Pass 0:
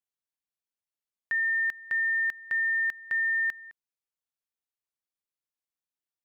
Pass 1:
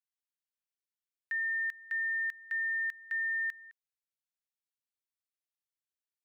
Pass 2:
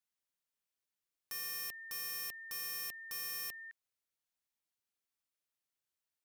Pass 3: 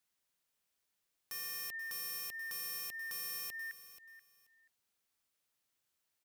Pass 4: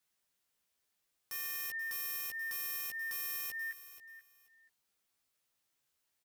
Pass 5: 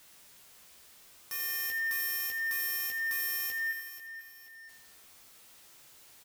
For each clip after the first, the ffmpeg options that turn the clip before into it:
-af "highpass=f=1.4k:w=0.5412,highpass=f=1.4k:w=1.3066,volume=-5.5dB"
-af "aeval=exprs='(mod(75*val(0)+1,2)-1)/75':c=same,volume=2.5dB"
-af "alimiter=level_in=19dB:limit=-24dB:level=0:latency=1,volume=-19dB,aecho=1:1:482|964:0.2|0.0419,volume=7dB"
-filter_complex "[0:a]asplit=2[a][b];[b]adelay=15,volume=-3.5dB[c];[a][c]amix=inputs=2:normalize=0"
-af "aeval=exprs='val(0)+0.5*0.00178*sgn(val(0))':c=same,aecho=1:1:84|168|252|336|420|504:0.376|0.199|0.106|0.056|0.0297|0.0157,volume=3.5dB"

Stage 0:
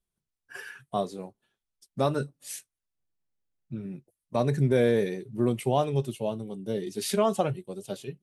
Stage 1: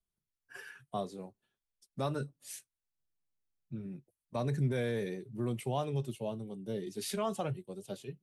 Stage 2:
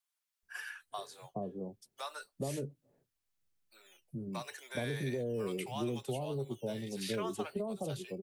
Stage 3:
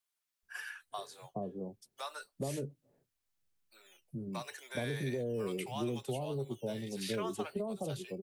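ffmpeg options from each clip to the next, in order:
-filter_complex "[0:a]lowshelf=f=180:g=3.5,acrossover=split=140|830|4800[a][b][c][d];[b]alimiter=limit=-22dB:level=0:latency=1[e];[a][e][c][d]amix=inputs=4:normalize=0,volume=-7dB"
-filter_complex "[0:a]acrossover=split=320|3800[a][b][c];[a]acompressor=threshold=-47dB:ratio=4[d];[b]acompressor=threshold=-39dB:ratio=4[e];[c]acompressor=threshold=-54dB:ratio=4[f];[d][e][f]amix=inputs=3:normalize=0,acrossover=split=220|1200[g][h][i];[g]acrusher=samples=14:mix=1:aa=0.000001:lfo=1:lforange=8.4:lforate=0.76[j];[j][h][i]amix=inputs=3:normalize=0,acrossover=split=720[k][l];[k]adelay=420[m];[m][l]amix=inputs=2:normalize=0,volume=5.5dB"
-af "asoftclip=type=hard:threshold=-26dB"

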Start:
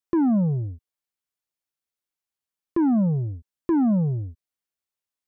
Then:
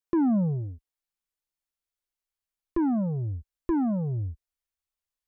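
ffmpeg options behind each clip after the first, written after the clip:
-af "asubboost=boost=11.5:cutoff=52,volume=-2.5dB"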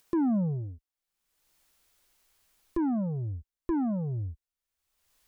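-af "acompressor=mode=upward:threshold=-45dB:ratio=2.5,volume=-3dB"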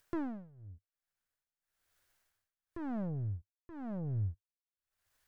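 -af "aeval=exprs='if(lt(val(0),0),0.447*val(0),val(0))':c=same,tremolo=f=0.97:d=0.94,equalizer=f=100:t=o:w=0.67:g=10,equalizer=f=630:t=o:w=0.67:g=4,equalizer=f=1.6k:t=o:w=0.67:g=9,volume=-5.5dB"

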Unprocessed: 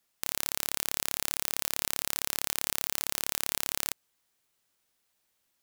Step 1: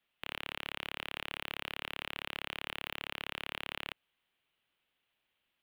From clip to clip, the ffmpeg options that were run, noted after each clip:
-filter_complex "[0:a]highshelf=f=4.2k:t=q:w=3:g=-12,bandreject=f=7.4k:w=13,acrossover=split=320|930|3300[a][b][c][d];[d]alimiter=level_in=2.5dB:limit=-24dB:level=0:latency=1,volume=-2.5dB[e];[a][b][c][e]amix=inputs=4:normalize=0,volume=-3.5dB"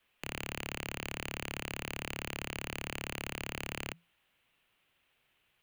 -af "asoftclip=type=tanh:threshold=-33.5dB,afreqshift=-170,volume=7.5dB"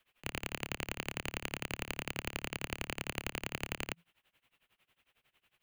-af "tremolo=f=11:d=0.94,volume=4dB"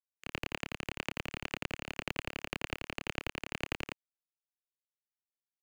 -filter_complex "[0:a]tremolo=f=9.1:d=0.54,acrossover=split=6300[a][b];[b]acompressor=threshold=-58dB:ratio=4:attack=1:release=60[c];[a][c]amix=inputs=2:normalize=0,acrusher=bits=6:mix=0:aa=0.5,volume=3dB"

